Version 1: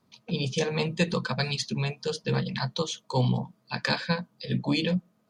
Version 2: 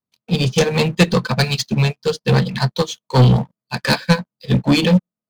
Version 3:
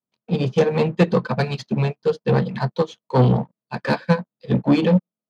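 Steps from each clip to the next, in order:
bass shelf 72 Hz +7.5 dB; waveshaping leveller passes 3; upward expansion 2.5:1, over -30 dBFS; trim +6.5 dB
band-pass filter 440 Hz, Q 0.5

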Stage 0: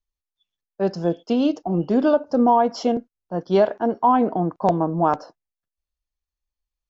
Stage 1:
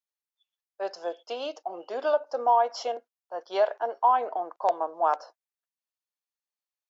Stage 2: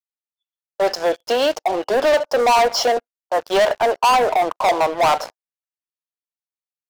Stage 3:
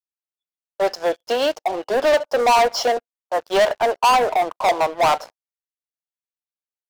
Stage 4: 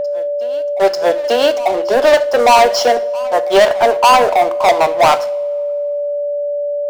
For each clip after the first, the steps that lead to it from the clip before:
high-pass 550 Hz 24 dB/octave; trim -3.5 dB
waveshaping leveller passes 5
upward expansion 1.5:1, over -31 dBFS
reverse echo 891 ms -20.5 dB; two-slope reverb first 0.45 s, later 2.1 s, from -18 dB, DRR 12 dB; whistle 580 Hz -22 dBFS; trim +6 dB

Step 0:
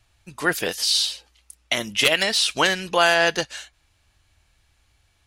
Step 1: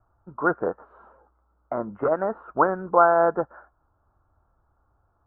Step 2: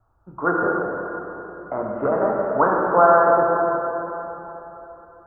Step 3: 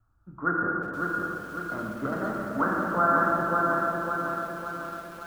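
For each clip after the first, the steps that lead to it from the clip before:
Chebyshev low-pass 1.4 kHz, order 6; bass shelf 280 Hz -8 dB; trim +4.5 dB
plate-style reverb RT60 3.6 s, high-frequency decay 0.6×, DRR -3 dB
high-order bell 630 Hz -12 dB; bit-crushed delay 553 ms, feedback 55%, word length 8-bit, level -3.5 dB; trim -2.5 dB

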